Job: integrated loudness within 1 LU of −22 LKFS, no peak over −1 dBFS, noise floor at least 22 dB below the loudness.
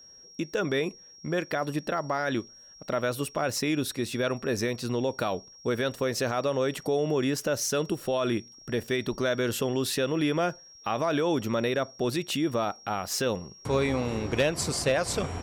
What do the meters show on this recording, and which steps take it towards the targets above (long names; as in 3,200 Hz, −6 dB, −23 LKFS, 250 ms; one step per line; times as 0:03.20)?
interfering tone 5,600 Hz; level of the tone −49 dBFS; integrated loudness −29.0 LKFS; sample peak −16.5 dBFS; target loudness −22.0 LKFS
→ notch filter 5,600 Hz, Q 30
level +7 dB